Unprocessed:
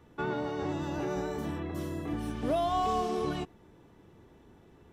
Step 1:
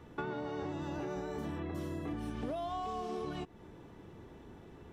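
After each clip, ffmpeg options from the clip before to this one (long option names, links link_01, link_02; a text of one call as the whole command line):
ffmpeg -i in.wav -af "acompressor=threshold=-40dB:ratio=10,highshelf=frequency=7500:gain=-6,volume=4.5dB" out.wav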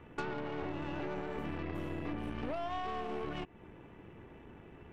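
ffmpeg -i in.wav -af "highshelf=frequency=3400:width_type=q:width=3:gain=-8.5,aeval=exprs='0.0596*(cos(1*acos(clip(val(0)/0.0596,-1,1)))-cos(1*PI/2))+0.00596*(cos(8*acos(clip(val(0)/0.0596,-1,1)))-cos(8*PI/2))':channel_layout=same,volume=-1dB" out.wav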